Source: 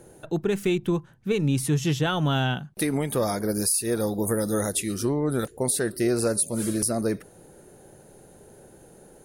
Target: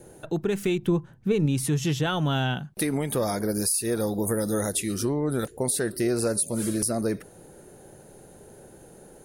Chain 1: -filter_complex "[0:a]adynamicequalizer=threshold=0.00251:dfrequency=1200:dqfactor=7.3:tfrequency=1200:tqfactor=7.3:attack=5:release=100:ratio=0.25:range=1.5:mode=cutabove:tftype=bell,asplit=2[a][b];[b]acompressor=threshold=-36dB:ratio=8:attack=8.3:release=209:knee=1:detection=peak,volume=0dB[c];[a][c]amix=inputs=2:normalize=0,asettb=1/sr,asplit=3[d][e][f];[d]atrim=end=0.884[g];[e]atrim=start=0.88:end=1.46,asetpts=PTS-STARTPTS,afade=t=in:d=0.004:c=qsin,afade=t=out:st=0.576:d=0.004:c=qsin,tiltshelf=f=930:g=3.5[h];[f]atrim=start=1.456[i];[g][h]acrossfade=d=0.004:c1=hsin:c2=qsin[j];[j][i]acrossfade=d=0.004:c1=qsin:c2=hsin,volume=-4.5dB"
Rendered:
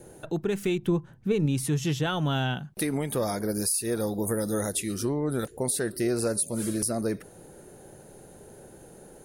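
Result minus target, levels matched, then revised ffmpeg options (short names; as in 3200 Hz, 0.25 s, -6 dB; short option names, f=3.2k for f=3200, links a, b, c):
compressor: peak gain reduction +8 dB
-filter_complex "[0:a]adynamicequalizer=threshold=0.00251:dfrequency=1200:dqfactor=7.3:tfrequency=1200:tqfactor=7.3:attack=5:release=100:ratio=0.25:range=1.5:mode=cutabove:tftype=bell,asplit=2[a][b];[b]acompressor=threshold=-27dB:ratio=8:attack=8.3:release=209:knee=1:detection=peak,volume=0dB[c];[a][c]amix=inputs=2:normalize=0,asettb=1/sr,asplit=3[d][e][f];[d]atrim=end=0.884[g];[e]atrim=start=0.88:end=1.46,asetpts=PTS-STARTPTS,afade=t=in:d=0.004:c=qsin,afade=t=out:st=0.576:d=0.004:c=qsin,tiltshelf=f=930:g=3.5[h];[f]atrim=start=1.456[i];[g][h]acrossfade=d=0.004:c1=hsin:c2=qsin[j];[j][i]acrossfade=d=0.004:c1=qsin:c2=hsin,volume=-4.5dB"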